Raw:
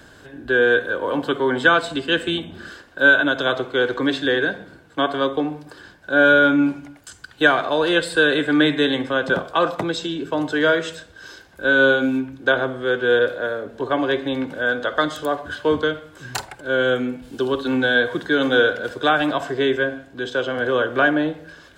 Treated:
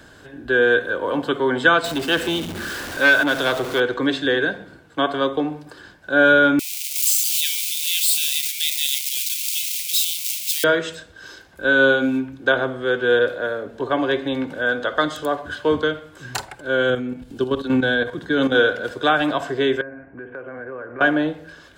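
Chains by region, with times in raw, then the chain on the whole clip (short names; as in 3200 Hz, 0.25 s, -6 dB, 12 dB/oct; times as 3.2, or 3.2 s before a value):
1.84–3.8 zero-crossing step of -25.5 dBFS + core saturation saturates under 1500 Hz
6.59–10.64 switching spikes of -11 dBFS + steep high-pass 2200 Hz 72 dB/oct
16.9–18.55 level quantiser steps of 10 dB + low shelf 260 Hz +8 dB
19.81–21.01 steep low-pass 2400 Hz 72 dB/oct + compressor 3:1, threshold -34 dBFS
whole clip: dry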